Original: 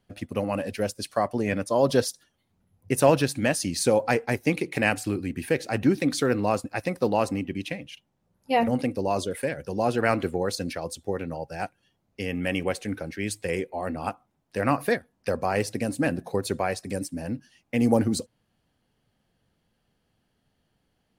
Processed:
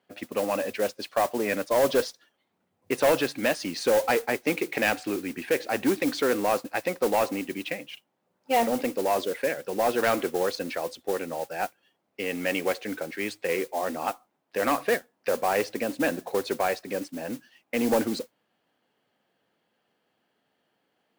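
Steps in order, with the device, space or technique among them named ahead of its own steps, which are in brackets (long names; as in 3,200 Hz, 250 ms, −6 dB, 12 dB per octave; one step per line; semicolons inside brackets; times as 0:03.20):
carbon microphone (band-pass filter 340–3,500 Hz; soft clipping −19 dBFS, distortion −12 dB; noise that follows the level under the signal 15 dB)
level +3.5 dB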